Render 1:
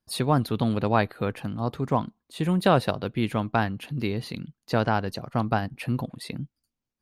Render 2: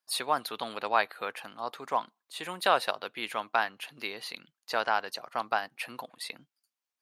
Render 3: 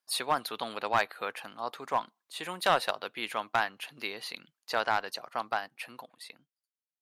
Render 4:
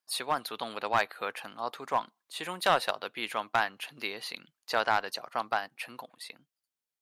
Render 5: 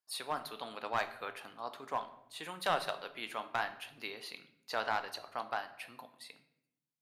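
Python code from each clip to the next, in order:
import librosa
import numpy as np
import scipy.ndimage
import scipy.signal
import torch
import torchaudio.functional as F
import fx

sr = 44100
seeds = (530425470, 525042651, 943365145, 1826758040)

y1 = scipy.signal.sosfilt(scipy.signal.butter(2, 830.0, 'highpass', fs=sr, output='sos'), x)
y1 = y1 * 10.0 ** (1.0 / 20.0)
y2 = fx.fade_out_tail(y1, sr, length_s=1.91)
y2 = fx.clip_asym(y2, sr, top_db=-19.0, bottom_db=-13.0)
y3 = fx.rider(y2, sr, range_db=3, speed_s=2.0)
y4 = fx.room_shoebox(y3, sr, seeds[0], volume_m3=190.0, walls='mixed', distance_m=0.37)
y4 = y4 * 10.0 ** (-7.5 / 20.0)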